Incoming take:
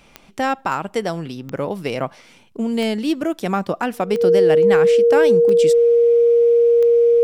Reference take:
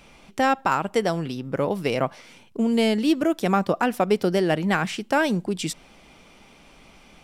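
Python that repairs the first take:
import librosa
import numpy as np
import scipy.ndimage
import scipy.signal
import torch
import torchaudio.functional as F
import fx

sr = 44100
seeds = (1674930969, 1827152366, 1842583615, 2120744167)

y = fx.fix_declick_ar(x, sr, threshold=10.0)
y = fx.notch(y, sr, hz=470.0, q=30.0)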